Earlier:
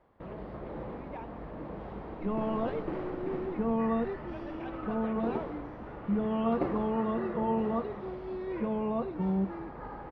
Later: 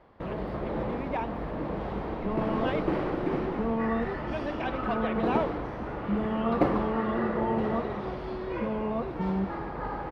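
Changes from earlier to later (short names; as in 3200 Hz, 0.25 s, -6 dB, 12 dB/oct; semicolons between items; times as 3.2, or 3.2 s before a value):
speech +11.5 dB; first sound +8.0 dB; master: add high shelf 3800 Hz +8 dB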